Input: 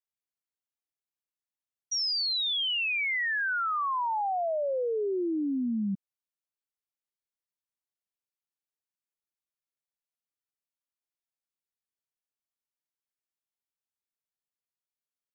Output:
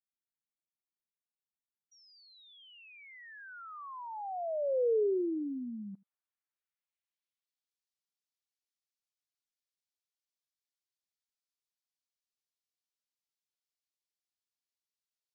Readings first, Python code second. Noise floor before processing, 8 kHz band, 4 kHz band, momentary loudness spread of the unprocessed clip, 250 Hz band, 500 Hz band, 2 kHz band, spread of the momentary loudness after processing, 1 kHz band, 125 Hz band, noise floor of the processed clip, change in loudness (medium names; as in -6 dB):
under -85 dBFS, no reading, under -25 dB, 5 LU, -7.0 dB, -1.0 dB, -22.0 dB, 23 LU, -12.5 dB, under -10 dB, under -85 dBFS, -6.0 dB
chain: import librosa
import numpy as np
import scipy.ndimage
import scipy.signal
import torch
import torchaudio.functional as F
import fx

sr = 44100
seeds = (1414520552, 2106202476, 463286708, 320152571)

p1 = fx.rider(x, sr, range_db=10, speed_s=0.5)
p2 = fx.filter_sweep_bandpass(p1, sr, from_hz=210.0, to_hz=4800.0, start_s=4.04, end_s=7.78, q=1.3)
y = p2 + fx.echo_single(p2, sr, ms=81, db=-23.5, dry=0)